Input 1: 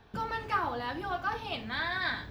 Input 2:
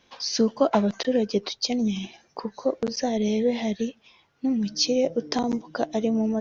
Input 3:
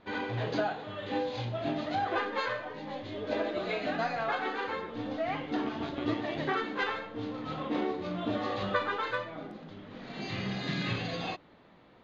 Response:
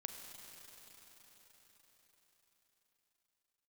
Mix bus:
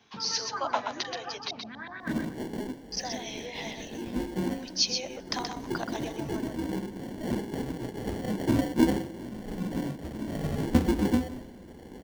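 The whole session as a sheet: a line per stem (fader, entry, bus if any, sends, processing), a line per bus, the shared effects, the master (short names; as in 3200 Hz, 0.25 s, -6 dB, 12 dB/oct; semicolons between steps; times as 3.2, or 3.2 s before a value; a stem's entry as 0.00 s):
-13.5 dB, 0.00 s, no send, echo send -6 dB, HPF 91 Hz; LFO low-pass saw up 8 Hz 610–3300 Hz
-2.0 dB, 0.00 s, muted 1.51–2.92, send -23 dB, echo send -5.5 dB, HPF 910 Hz 24 dB/oct
+2.0 dB, 2.00 s, send -12.5 dB, no echo send, HPF 1200 Hz 24 dB/oct; comb 1.8 ms, depth 71%; sample-and-hold 35×; auto duck -9 dB, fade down 0.80 s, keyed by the second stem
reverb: on, RT60 5.2 s, pre-delay 33 ms
echo: echo 0.127 s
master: bell 240 Hz +11 dB 1.6 oct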